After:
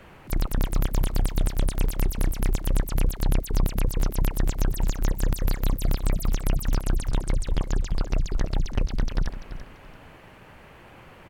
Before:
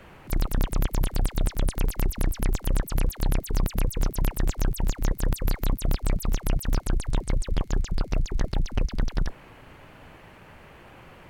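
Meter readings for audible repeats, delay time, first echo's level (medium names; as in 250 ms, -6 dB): 2, 339 ms, -12.0 dB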